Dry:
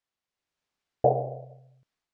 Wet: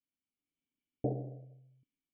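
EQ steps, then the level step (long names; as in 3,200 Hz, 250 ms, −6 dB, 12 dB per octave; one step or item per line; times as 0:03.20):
formant resonators in series i
+5.5 dB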